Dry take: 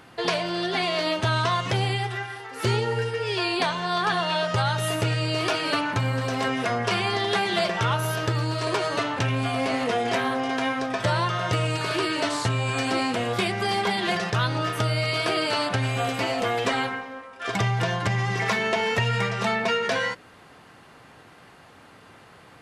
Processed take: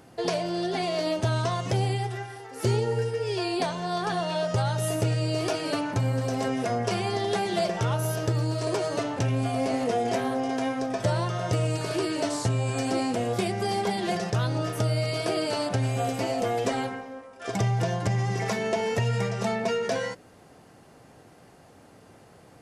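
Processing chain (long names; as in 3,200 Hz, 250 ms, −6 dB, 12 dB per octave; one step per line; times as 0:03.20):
flat-topped bell 2,000 Hz −9 dB 2.4 octaves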